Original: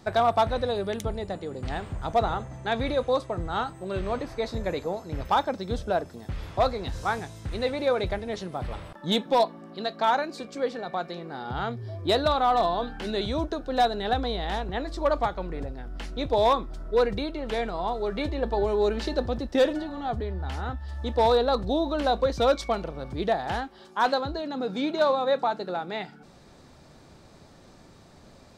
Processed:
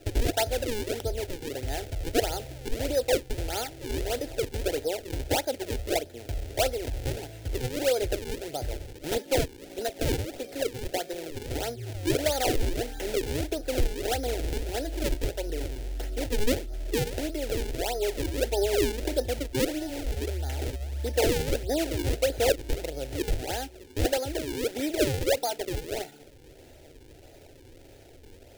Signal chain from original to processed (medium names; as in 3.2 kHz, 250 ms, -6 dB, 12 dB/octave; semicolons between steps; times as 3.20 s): de-hum 62.41 Hz, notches 3; in parallel at +3 dB: compression, threshold -31 dBFS, peak gain reduction 13.5 dB; on the sum: decimation with a swept rate 39×, swing 160% 1.6 Hz; static phaser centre 460 Hz, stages 4; trim -3 dB